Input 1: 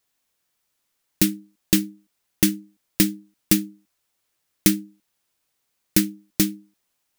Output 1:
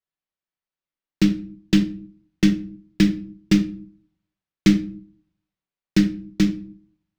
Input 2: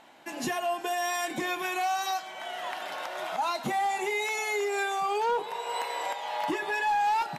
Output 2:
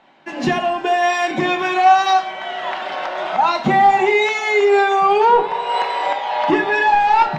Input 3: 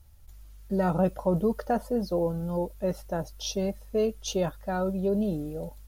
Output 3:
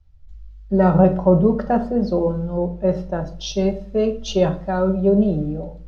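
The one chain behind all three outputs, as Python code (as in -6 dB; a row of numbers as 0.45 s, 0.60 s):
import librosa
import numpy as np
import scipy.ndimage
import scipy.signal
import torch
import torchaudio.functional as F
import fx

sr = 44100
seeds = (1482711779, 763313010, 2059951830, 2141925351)

y = fx.air_absorb(x, sr, metres=180.0)
y = fx.room_shoebox(y, sr, seeds[0], volume_m3=660.0, walls='furnished', distance_m=1.1)
y = fx.band_widen(y, sr, depth_pct=40)
y = librosa.util.normalize(y) * 10.0 ** (-2 / 20.0)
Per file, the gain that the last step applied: +1.0 dB, +14.0 dB, +7.5 dB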